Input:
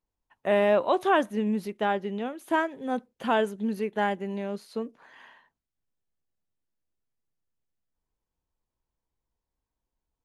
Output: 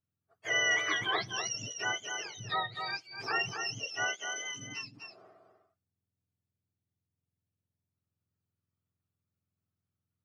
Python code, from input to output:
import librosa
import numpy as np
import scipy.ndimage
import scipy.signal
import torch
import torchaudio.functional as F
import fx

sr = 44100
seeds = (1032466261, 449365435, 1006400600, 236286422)

y = fx.octave_mirror(x, sr, pivot_hz=1100.0)
y = fx.brickwall_highpass(y, sr, low_hz=180.0, at=(3.84, 4.49))
y = y + 10.0 ** (-6.5 / 20.0) * np.pad(y, (int(250 * sr / 1000.0), 0))[:len(y)]
y = y * librosa.db_to_amplitude(-5.0)